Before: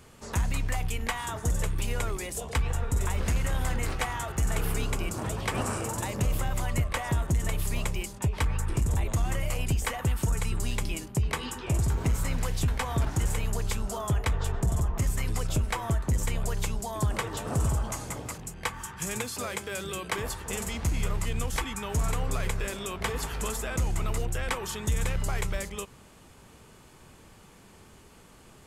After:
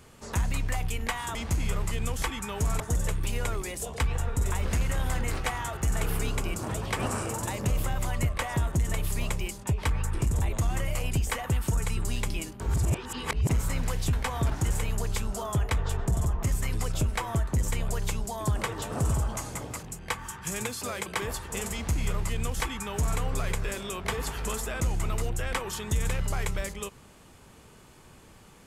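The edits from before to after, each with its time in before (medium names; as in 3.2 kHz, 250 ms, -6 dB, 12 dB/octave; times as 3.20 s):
11.15–12.04 s: reverse
19.61–20.02 s: delete
20.69–22.14 s: copy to 1.35 s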